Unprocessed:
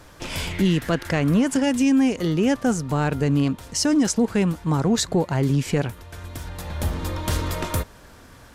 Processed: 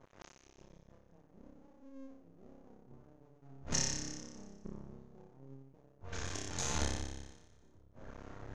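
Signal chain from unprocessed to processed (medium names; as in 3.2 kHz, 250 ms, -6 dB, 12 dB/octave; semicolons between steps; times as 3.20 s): 3.42–4.41 s: square wave that keeps the level; inverted gate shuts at -21 dBFS, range -36 dB; level-controlled noise filter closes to 490 Hz, open at -31.5 dBFS; 6.14–6.75 s: high-pass 47 Hz; flutter echo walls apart 5.1 m, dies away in 1.2 s; on a send at -6.5 dB: reverberation RT60 0.65 s, pre-delay 4 ms; on the sum: half-wave rectifier; four-pole ladder low-pass 6.9 kHz, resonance 75%; trim +8.5 dB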